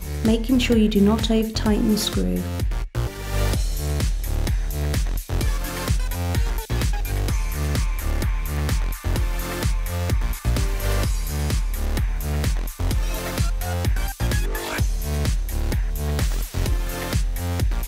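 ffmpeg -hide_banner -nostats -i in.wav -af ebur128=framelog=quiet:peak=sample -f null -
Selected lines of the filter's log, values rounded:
Integrated loudness:
  I:         -24.2 LUFS
  Threshold: -34.1 LUFS
Loudness range:
  LRA:         4.0 LU
  Threshold: -44.7 LUFS
  LRA low:   -25.5 LUFS
  LRA high:  -21.5 LUFS
Sample peak:
  Peak:       -6.7 dBFS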